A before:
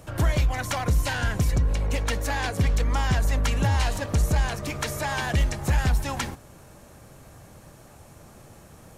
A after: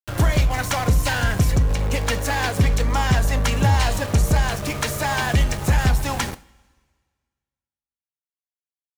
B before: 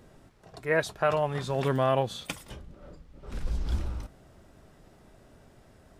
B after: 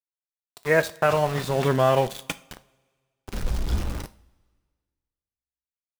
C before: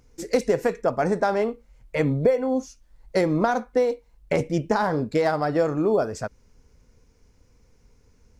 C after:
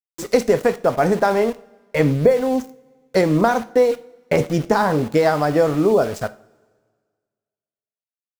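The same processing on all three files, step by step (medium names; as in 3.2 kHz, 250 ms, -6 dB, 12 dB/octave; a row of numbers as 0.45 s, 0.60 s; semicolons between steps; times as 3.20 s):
small samples zeroed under -35 dBFS; two-slope reverb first 0.36 s, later 1.7 s, from -20 dB, DRR 11.5 dB; trim +5 dB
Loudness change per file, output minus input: +4.5 LU, +5.5 LU, +5.5 LU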